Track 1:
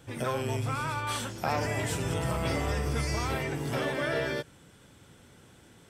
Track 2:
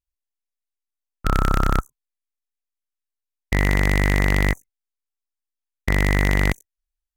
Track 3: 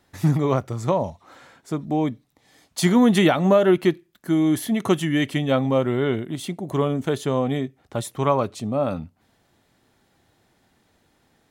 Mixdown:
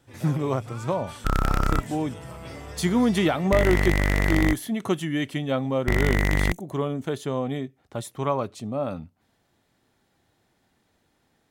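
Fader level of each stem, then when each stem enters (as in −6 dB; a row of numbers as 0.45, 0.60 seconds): −9.5, −3.5, −5.0 decibels; 0.00, 0.00, 0.00 seconds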